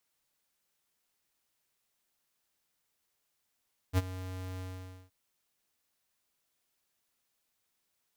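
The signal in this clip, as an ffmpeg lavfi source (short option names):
-f lavfi -i "aevalsrc='0.0631*(2*lt(mod(92.7*t,1),0.5)-1)':d=1.173:s=44100,afade=t=in:d=0.048,afade=t=out:st=0.048:d=0.031:silence=0.158,afade=t=out:st=0.67:d=0.503"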